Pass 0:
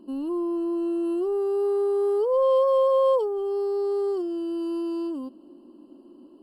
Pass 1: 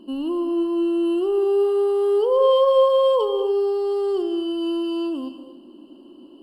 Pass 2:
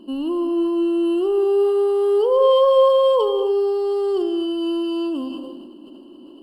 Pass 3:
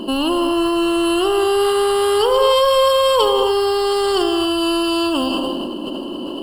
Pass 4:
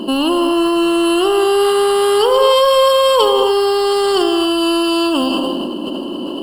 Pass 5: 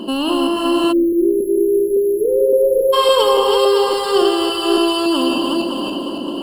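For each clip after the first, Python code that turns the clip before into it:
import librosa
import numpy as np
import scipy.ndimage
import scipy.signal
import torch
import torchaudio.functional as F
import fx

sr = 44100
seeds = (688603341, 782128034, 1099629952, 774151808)

y1 = fx.peak_eq(x, sr, hz=3000.0, db=13.0, octaves=0.4)
y1 = fx.rev_gated(y1, sr, seeds[0], gate_ms=320, shape='flat', drr_db=8.5)
y1 = y1 * 10.0 ** (3.5 / 20.0)
y2 = fx.sustainer(y1, sr, db_per_s=30.0)
y2 = y2 * 10.0 ** (1.5 / 20.0)
y3 = fx.spectral_comp(y2, sr, ratio=2.0)
y3 = y3 * 10.0 ** (3.0 / 20.0)
y4 = fx.low_shelf_res(y3, sr, hz=120.0, db=-7.0, q=1.5)
y4 = y4 * 10.0 ** (2.5 / 20.0)
y5 = fx.reverse_delay_fb(y4, sr, ms=281, feedback_pct=56, wet_db=-3)
y5 = fx.spec_erase(y5, sr, start_s=0.92, length_s=2.01, low_hz=600.0, high_hz=11000.0)
y5 = y5 * 10.0 ** (-3.5 / 20.0)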